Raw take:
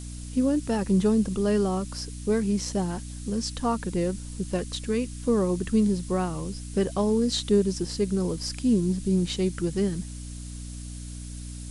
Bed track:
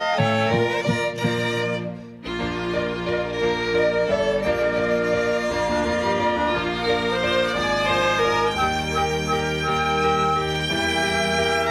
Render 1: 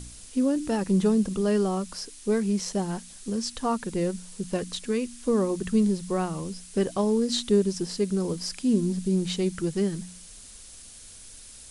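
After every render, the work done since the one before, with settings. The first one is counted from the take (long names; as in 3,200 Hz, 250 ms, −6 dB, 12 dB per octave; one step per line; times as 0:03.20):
hum removal 60 Hz, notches 5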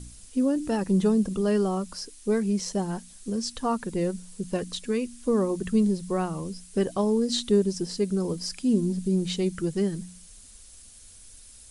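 broadband denoise 6 dB, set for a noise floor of −47 dBFS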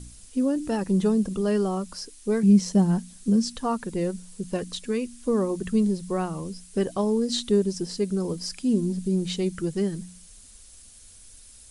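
0:02.43–0:03.57: parametric band 190 Hz +10.5 dB 1.1 octaves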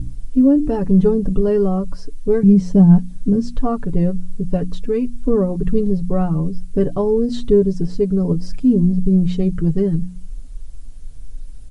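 spectral tilt −4.5 dB per octave
comb filter 7 ms, depth 71%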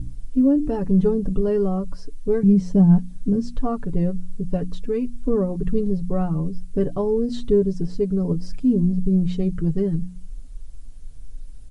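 level −4.5 dB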